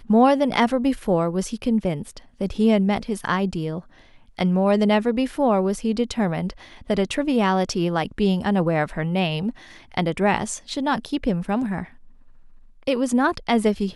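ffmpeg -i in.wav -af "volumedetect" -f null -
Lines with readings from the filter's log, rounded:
mean_volume: -22.1 dB
max_volume: -4.8 dB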